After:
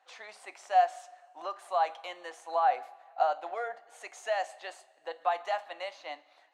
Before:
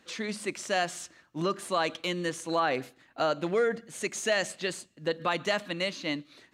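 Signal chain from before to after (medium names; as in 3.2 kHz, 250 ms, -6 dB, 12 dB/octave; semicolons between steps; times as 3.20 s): ladder high-pass 700 Hz, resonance 75%; treble shelf 2.8 kHz -9 dB; two-slope reverb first 0.24 s, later 1.9 s, from -18 dB, DRR 11 dB; trim +5 dB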